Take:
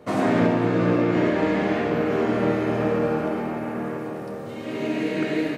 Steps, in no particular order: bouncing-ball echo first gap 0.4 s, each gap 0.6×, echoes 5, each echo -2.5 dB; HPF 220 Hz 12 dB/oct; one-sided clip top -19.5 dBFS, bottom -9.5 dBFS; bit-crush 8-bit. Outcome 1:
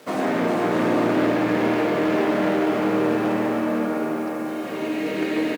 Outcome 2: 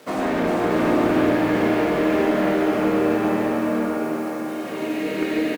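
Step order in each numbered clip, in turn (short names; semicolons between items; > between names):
bouncing-ball echo > bit-crush > one-sided clip > HPF; bit-crush > HPF > one-sided clip > bouncing-ball echo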